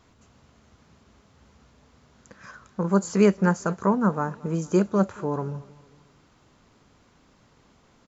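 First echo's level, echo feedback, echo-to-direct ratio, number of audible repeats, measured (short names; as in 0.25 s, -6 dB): -22.0 dB, 48%, -21.0 dB, 3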